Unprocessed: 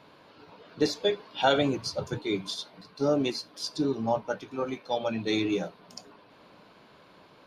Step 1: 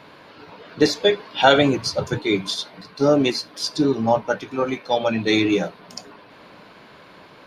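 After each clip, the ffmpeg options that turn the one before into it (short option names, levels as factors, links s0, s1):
-af "equalizer=f=1900:t=o:w=0.74:g=4.5,volume=2.66"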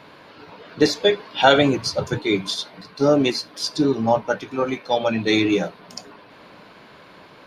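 -af anull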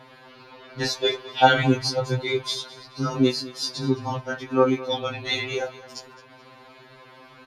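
-af "aecho=1:1:214|428|642:0.119|0.0368|0.0114,afftfilt=real='re*2.45*eq(mod(b,6),0)':imag='im*2.45*eq(mod(b,6),0)':win_size=2048:overlap=0.75"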